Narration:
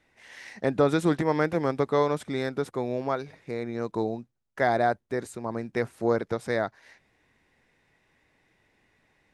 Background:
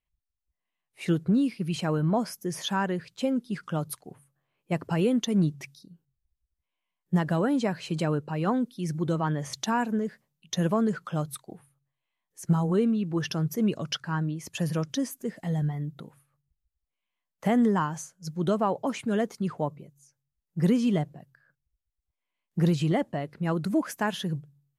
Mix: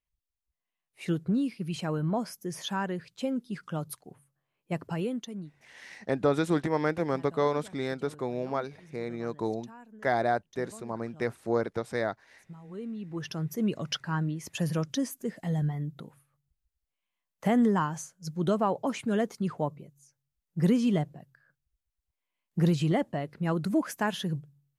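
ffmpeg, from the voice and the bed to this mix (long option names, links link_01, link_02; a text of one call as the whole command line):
ffmpeg -i stem1.wav -i stem2.wav -filter_complex "[0:a]adelay=5450,volume=-3dB[link_01];[1:a]volume=18.5dB,afade=type=out:start_time=4.8:duration=0.7:silence=0.105925,afade=type=in:start_time=12.63:duration=1.31:silence=0.0749894[link_02];[link_01][link_02]amix=inputs=2:normalize=0" out.wav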